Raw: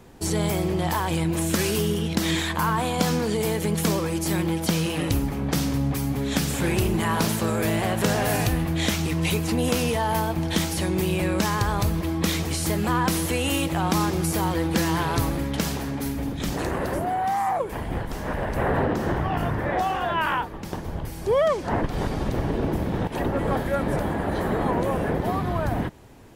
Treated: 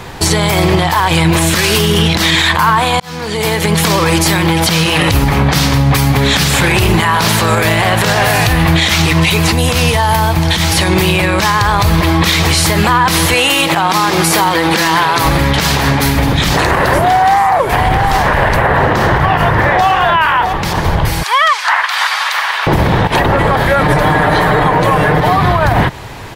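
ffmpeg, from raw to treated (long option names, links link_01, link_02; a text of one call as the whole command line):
ffmpeg -i in.wav -filter_complex "[0:a]asettb=1/sr,asplit=3[link_01][link_02][link_03];[link_01]atrim=end=9.514[link_04];[link_02]atrim=start=9.51:end=10.72,asetpts=PTS-STARTPTS,afade=type=in:duration=0.004:curve=qsin,afade=type=out:start_time=1.206:duration=0.004:curve=qsin,acrossover=split=150|4900[link_05][link_06][link_07];[link_05]acompressor=threshold=-30dB:ratio=4[link_08];[link_06]acompressor=threshold=-33dB:ratio=4[link_09];[link_07]acompressor=threshold=-41dB:ratio=4[link_10];[link_08][link_09][link_10]amix=inputs=3:normalize=0[link_11];[link_03]atrim=start=10.716[link_12];[link_04][link_11]acrossfade=duration=0.004:curve1=hsin:curve2=qsin[link_13];[link_13][link_12]acrossfade=duration=0.004:curve1=qsin:curve2=hsin,asettb=1/sr,asplit=3[link_14][link_15][link_16];[link_14]atrim=end=13.344[link_17];[link_15]atrim=start=13.34:end=15.25,asetpts=PTS-STARTPTS,afade=type=in:duration=0.004:curve=qsin,afade=type=out:start_time=1.906:duration=0.004:curve=qsin,highpass=200[link_18];[link_16]atrim=start=15.246[link_19];[link_17][link_18]acrossfade=duration=0.004:curve1=hsin:curve2=qsin[link_20];[link_20][link_19]acrossfade=duration=0.004:curve1=qsin:curve2=hsin,asplit=3[link_21][link_22][link_23];[link_21]afade=type=out:start_time=16.73:duration=0.02[link_24];[link_22]aecho=1:1:665:0.282,afade=type=in:start_time=16.73:duration=0.02,afade=type=out:start_time=20.52:duration=0.02[link_25];[link_23]afade=type=in:start_time=20.52:duration=0.02[link_26];[link_24][link_25][link_26]amix=inputs=3:normalize=0,asettb=1/sr,asplit=3[link_27][link_28][link_29];[link_27]atrim=end=21.234[link_30];[link_28]atrim=start=21.23:end=22.67,asetpts=PTS-STARTPTS,afade=type=in:duration=0.004:curve=qsin,afade=type=out:start_time=1.436:duration=0.004:curve=qsin,highpass=frequency=1100:width=0.5412,highpass=frequency=1100:width=1.3066[link_31];[link_29]atrim=start=22.666[link_32];[link_30][link_31]acrossfade=duration=0.004:curve1=hsin:curve2=qsin[link_33];[link_33][link_32]acrossfade=duration=0.004:curve1=qsin:curve2=hsin,asettb=1/sr,asplit=3[link_34][link_35][link_36];[link_34]atrim=end=23.814[link_37];[link_35]atrim=start=23.81:end=25.37,asetpts=PTS-STARTPTS,afade=type=in:duration=0.004:curve=qsin,afade=type=out:start_time=1.556:duration=0.004:curve=qsin,aecho=1:1:6.6:0.65,atrim=end_sample=68796[link_38];[link_36]atrim=start=25.366[link_39];[link_37][link_38]acrossfade=duration=0.004:curve1=hsin:curve2=qsin[link_40];[link_40][link_39]acrossfade=duration=0.004:curve1=qsin:curve2=hsin,asplit=2[link_41][link_42];[link_41]atrim=end=3,asetpts=PTS-STARTPTS,afade=type=out:start_time=2.996:duration=0.004:curve=hsin[link_43];[link_42]atrim=start=3,asetpts=PTS-STARTPTS,afade=type=in:duration=1.35[link_44];[link_43][link_44]concat=n=2:v=0:a=1,equalizer=frequency=125:width_type=o:width=1:gain=4,equalizer=frequency=250:width_type=o:width=1:gain=-6,equalizer=frequency=1000:width_type=o:width=1:gain=6,equalizer=frequency=2000:width_type=o:width=1:gain=6,equalizer=frequency=4000:width_type=o:width=1:gain=7,acompressor=threshold=-23dB:ratio=6,alimiter=level_in=19.5dB:limit=-1dB:release=50:level=0:latency=1,volume=-1dB" out.wav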